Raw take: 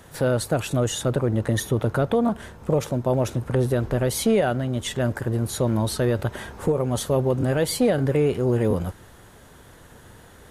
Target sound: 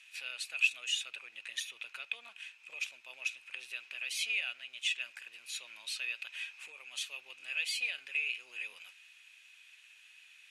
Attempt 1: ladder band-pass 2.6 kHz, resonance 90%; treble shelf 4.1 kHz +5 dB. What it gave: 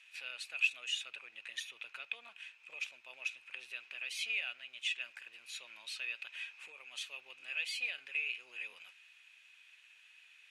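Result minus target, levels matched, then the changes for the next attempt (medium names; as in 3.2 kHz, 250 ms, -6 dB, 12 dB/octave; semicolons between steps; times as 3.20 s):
8 kHz band -4.0 dB
change: treble shelf 4.1 kHz +14 dB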